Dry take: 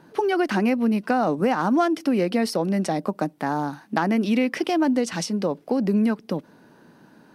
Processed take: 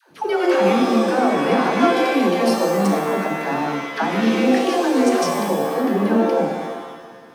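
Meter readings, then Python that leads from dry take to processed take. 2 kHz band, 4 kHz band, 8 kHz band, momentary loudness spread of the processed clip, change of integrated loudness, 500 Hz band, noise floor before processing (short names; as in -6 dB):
+6.0 dB, +6.5 dB, +5.0 dB, 7 LU, +4.5 dB, +6.5 dB, -54 dBFS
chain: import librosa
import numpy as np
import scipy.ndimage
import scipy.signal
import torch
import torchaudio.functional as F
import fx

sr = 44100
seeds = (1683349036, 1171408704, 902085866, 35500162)

y = fx.dispersion(x, sr, late='lows', ms=111.0, hz=500.0)
y = fx.rev_shimmer(y, sr, seeds[0], rt60_s=1.2, semitones=7, shimmer_db=-2, drr_db=3.0)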